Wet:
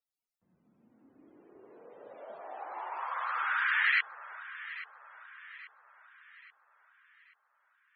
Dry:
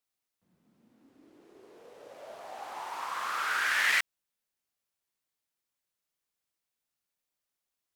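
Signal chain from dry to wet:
delay that swaps between a low-pass and a high-pass 416 ms, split 1,100 Hz, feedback 68%, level −12 dB
spectral peaks only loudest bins 64

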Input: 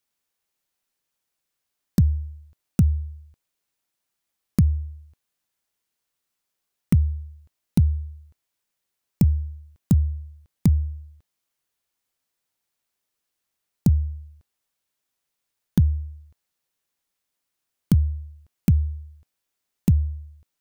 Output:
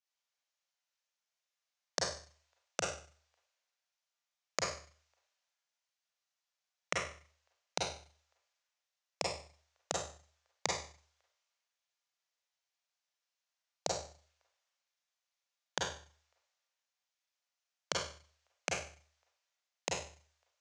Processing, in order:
elliptic band-pass filter 570–6,500 Hz, stop band 40 dB
four-comb reverb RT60 0.49 s, combs from 32 ms, DRR −2 dB
multiband upward and downward expander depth 40%
level +4 dB

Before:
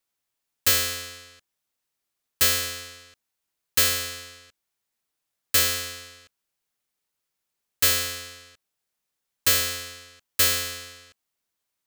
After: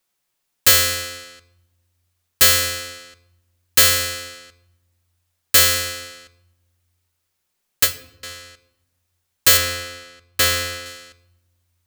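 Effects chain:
0:07.83–0:08.23: fade out exponential
0:09.57–0:10.86: high-shelf EQ 5,100 Hz −8 dB
rectangular room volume 3,500 cubic metres, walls furnished, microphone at 0.96 metres
level +7 dB

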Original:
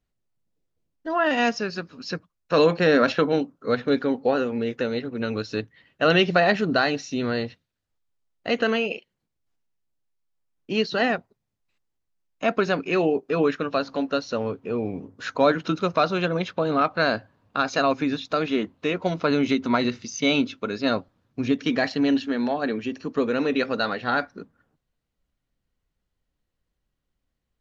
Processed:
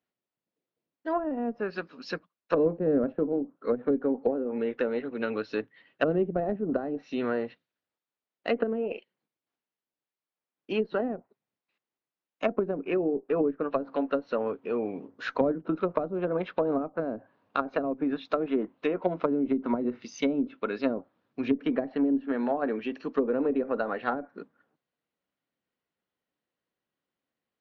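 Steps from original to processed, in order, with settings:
band-pass filter 260–3,700 Hz
harmonic generator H 2 −8 dB, 4 −17 dB, 5 −44 dB, 7 −32 dB, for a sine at −6.5 dBFS
treble cut that deepens with the level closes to 360 Hz, closed at −19.5 dBFS

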